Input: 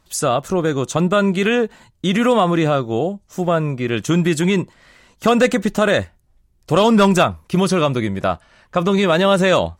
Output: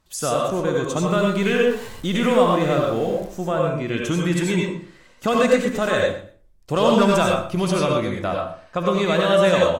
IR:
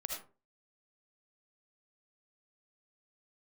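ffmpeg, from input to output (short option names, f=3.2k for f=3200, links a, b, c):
-filter_complex "[0:a]asettb=1/sr,asplit=3[a][b][c];[a]atrim=end=0.994[d];[b]atrim=start=0.99:end=3.27,asetpts=PTS-STARTPTS,afade=t=in:d=0.004:c=qsin,afade=t=out:st=2.276:d=0.004:c=qsin,aeval=exprs='val(0)+0.5*0.0282*sgn(val(0))':c=same[e];[c]atrim=start=3.266[f];[d][e]acrossfade=d=0.004:c1=hsin:c2=qsin[g];[g][f]acrossfade=d=0.004:c1=qsin:c2=hsin,aecho=1:1:119|238:0.158|0.0269[h];[1:a]atrim=start_sample=2205,asetrate=36603,aresample=44100[i];[h][i]afir=irnorm=-1:irlink=0,volume=-4.5dB"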